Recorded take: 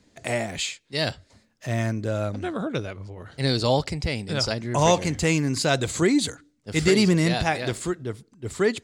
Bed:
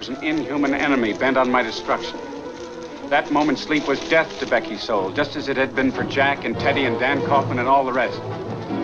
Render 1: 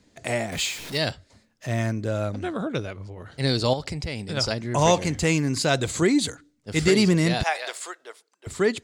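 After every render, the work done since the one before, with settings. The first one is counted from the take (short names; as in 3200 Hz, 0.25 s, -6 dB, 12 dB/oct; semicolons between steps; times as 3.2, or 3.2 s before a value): 0.52–0.98 zero-crossing step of -32 dBFS; 3.73–4.37 compressor 4:1, threshold -26 dBFS; 7.43–8.47 HPF 590 Hz 24 dB/oct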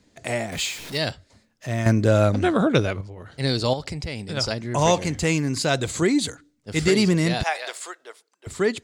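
1.86–3.01 gain +9 dB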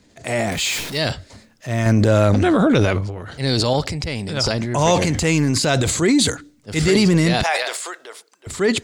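transient shaper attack -4 dB, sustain +8 dB; in parallel at -1.5 dB: limiter -14.5 dBFS, peak gain reduction 8.5 dB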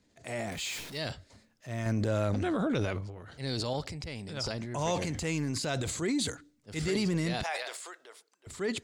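gain -14.5 dB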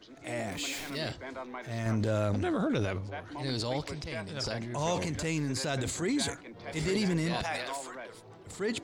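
add bed -23.5 dB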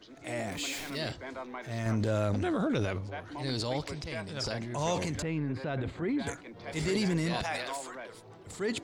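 5.22–6.27 air absorption 450 m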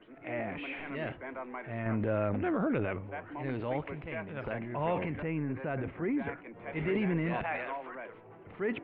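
steep low-pass 2700 Hz 48 dB/oct; bell 75 Hz -7 dB 1.4 oct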